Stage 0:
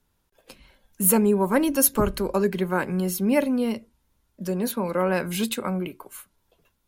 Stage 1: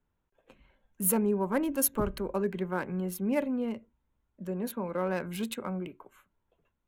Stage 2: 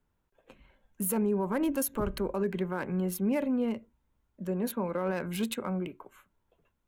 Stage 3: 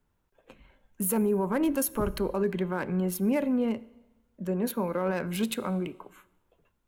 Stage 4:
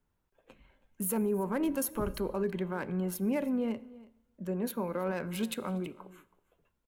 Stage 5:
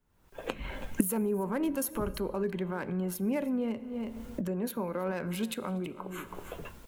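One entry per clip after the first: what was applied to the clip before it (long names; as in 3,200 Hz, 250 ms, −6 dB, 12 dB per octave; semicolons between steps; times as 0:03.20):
adaptive Wiener filter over 9 samples; level −7.5 dB
brickwall limiter −23.5 dBFS, peak gain reduction 10 dB; level +2.5 dB
dense smooth reverb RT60 1.1 s, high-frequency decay 1×, DRR 18.5 dB; level +2.5 dB
single-tap delay 323 ms −21 dB; level −4.5 dB
camcorder AGC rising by 64 dB per second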